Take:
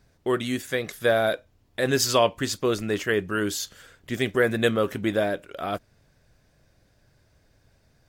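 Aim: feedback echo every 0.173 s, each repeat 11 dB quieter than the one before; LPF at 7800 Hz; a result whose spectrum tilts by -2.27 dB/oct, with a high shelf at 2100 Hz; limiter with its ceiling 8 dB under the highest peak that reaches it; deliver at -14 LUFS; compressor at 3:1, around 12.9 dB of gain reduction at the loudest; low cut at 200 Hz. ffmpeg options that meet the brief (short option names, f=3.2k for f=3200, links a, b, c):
-af "highpass=200,lowpass=7.8k,highshelf=f=2.1k:g=7.5,acompressor=threshold=-32dB:ratio=3,alimiter=limit=-23dB:level=0:latency=1,aecho=1:1:173|346|519:0.282|0.0789|0.0221,volume=21dB"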